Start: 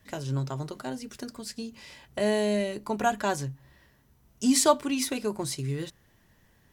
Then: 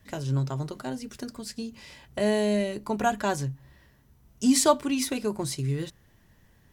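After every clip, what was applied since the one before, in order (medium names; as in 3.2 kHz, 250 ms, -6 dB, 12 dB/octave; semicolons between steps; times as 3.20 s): bass shelf 200 Hz +5 dB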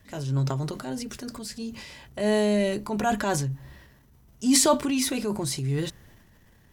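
transient shaper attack -6 dB, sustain +6 dB; trim +2 dB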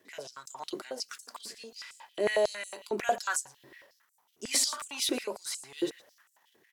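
echo from a far wall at 20 m, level -16 dB; step-sequenced high-pass 11 Hz 360–7800 Hz; trim -6 dB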